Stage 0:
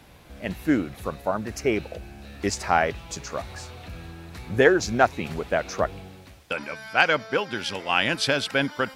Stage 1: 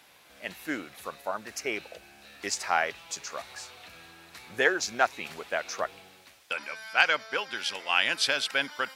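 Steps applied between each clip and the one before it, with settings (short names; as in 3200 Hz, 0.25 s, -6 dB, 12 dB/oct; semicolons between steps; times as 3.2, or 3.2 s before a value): HPF 1400 Hz 6 dB/oct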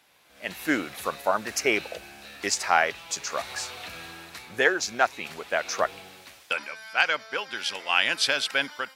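AGC gain up to 15 dB; gain -5.5 dB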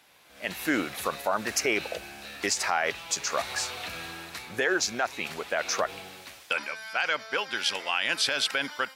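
limiter -17 dBFS, peak gain reduction 10.5 dB; gain +2.5 dB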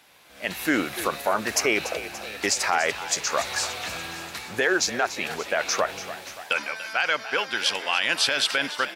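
frequency-shifting echo 0.289 s, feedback 61%, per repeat +48 Hz, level -13.5 dB; gain +3.5 dB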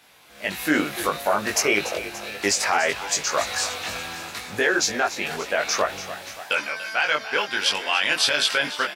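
doubler 20 ms -2.5 dB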